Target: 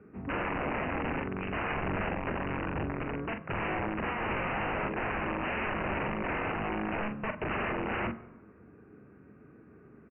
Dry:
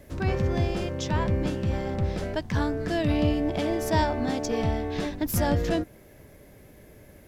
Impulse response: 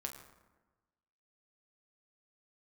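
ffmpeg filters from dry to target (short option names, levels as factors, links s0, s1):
-filter_complex "[0:a]highpass=180,equalizer=f=280:w=0.49:g=4,aresample=8000,aeval=exprs='(mod(14.1*val(0)+1,2)-1)/14.1':c=same,aresample=44100,asplit=2[s0][s1];[s1]adelay=31,volume=0.447[s2];[s0][s2]amix=inputs=2:normalize=0,asetrate=31752,aresample=44100,asplit=2[s3][s4];[1:a]atrim=start_sample=2205,lowpass=3400[s5];[s4][s5]afir=irnorm=-1:irlink=0,volume=0.562[s6];[s3][s6]amix=inputs=2:normalize=0,volume=0.398"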